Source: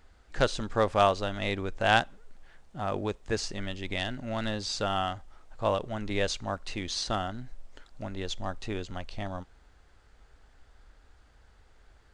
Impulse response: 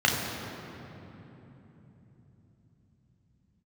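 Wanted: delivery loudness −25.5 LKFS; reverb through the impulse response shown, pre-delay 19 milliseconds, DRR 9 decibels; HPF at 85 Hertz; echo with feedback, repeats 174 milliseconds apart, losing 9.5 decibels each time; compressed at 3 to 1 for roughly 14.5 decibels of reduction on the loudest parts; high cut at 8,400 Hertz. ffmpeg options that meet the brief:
-filter_complex "[0:a]highpass=85,lowpass=8400,acompressor=threshold=-38dB:ratio=3,aecho=1:1:174|348|522|696:0.335|0.111|0.0365|0.012,asplit=2[link_01][link_02];[1:a]atrim=start_sample=2205,adelay=19[link_03];[link_02][link_03]afir=irnorm=-1:irlink=0,volume=-25dB[link_04];[link_01][link_04]amix=inputs=2:normalize=0,volume=14.5dB"

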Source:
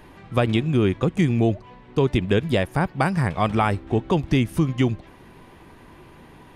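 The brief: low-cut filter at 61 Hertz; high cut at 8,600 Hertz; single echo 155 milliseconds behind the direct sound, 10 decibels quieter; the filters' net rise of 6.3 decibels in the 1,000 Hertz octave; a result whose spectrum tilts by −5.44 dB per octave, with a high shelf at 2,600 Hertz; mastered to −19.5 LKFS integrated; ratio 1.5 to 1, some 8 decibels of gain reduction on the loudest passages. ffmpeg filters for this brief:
ffmpeg -i in.wav -af "highpass=61,lowpass=8600,equalizer=frequency=1000:width_type=o:gain=7.5,highshelf=frequency=2600:gain=5.5,acompressor=threshold=-34dB:ratio=1.5,aecho=1:1:155:0.316,volume=8dB" out.wav

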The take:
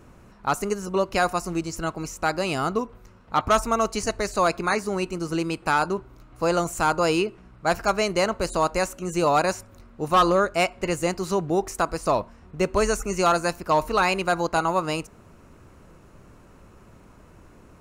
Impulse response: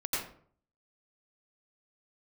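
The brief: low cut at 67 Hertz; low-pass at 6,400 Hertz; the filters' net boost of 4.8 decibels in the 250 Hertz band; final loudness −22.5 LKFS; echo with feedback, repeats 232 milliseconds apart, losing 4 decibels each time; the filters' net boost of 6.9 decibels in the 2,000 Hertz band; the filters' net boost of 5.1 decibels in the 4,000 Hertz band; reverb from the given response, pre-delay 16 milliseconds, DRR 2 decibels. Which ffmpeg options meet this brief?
-filter_complex "[0:a]highpass=67,lowpass=6400,equalizer=frequency=250:width_type=o:gain=7.5,equalizer=frequency=2000:width_type=o:gain=8.5,equalizer=frequency=4000:width_type=o:gain=4,aecho=1:1:232|464|696|928|1160|1392|1624|1856|2088:0.631|0.398|0.25|0.158|0.0994|0.0626|0.0394|0.0249|0.0157,asplit=2[link_01][link_02];[1:a]atrim=start_sample=2205,adelay=16[link_03];[link_02][link_03]afir=irnorm=-1:irlink=0,volume=-8dB[link_04];[link_01][link_04]amix=inputs=2:normalize=0,volume=-6dB"

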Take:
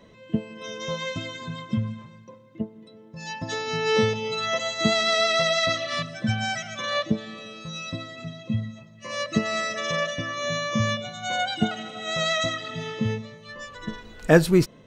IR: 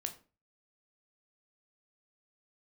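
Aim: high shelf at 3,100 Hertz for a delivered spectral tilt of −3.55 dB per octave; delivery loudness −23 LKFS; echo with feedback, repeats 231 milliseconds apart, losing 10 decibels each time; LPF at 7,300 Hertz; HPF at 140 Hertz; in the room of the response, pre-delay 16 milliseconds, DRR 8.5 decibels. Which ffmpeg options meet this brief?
-filter_complex "[0:a]highpass=140,lowpass=7300,highshelf=frequency=3100:gain=5,aecho=1:1:231|462|693|924:0.316|0.101|0.0324|0.0104,asplit=2[link_01][link_02];[1:a]atrim=start_sample=2205,adelay=16[link_03];[link_02][link_03]afir=irnorm=-1:irlink=0,volume=-7.5dB[link_04];[link_01][link_04]amix=inputs=2:normalize=0,volume=1dB"

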